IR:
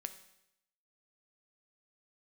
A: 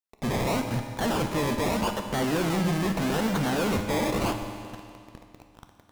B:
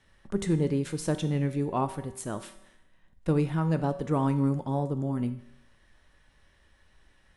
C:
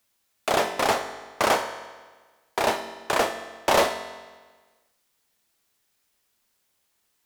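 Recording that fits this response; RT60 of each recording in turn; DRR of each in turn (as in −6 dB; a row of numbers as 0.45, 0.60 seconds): B; 2.3, 0.80, 1.4 seconds; 5.0, 8.5, 7.5 decibels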